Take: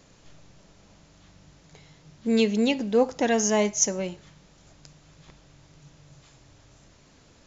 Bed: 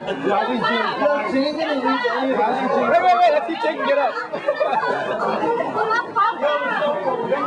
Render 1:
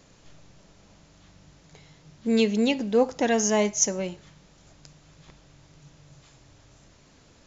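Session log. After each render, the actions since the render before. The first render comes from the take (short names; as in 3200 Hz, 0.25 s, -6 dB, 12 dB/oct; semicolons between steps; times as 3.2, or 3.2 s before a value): nothing audible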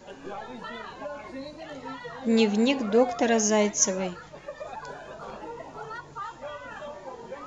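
add bed -19 dB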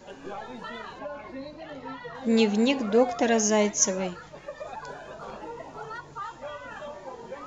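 0.99–2.15 air absorption 110 m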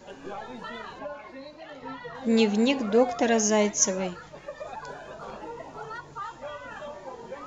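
1.13–1.82 low shelf 370 Hz -9 dB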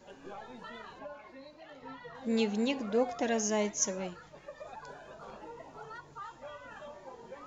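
gain -8 dB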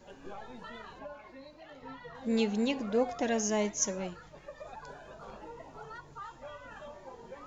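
low shelf 78 Hz +10 dB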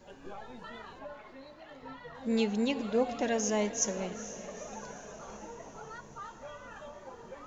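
diffused feedback echo 0.461 s, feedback 63%, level -13.5 dB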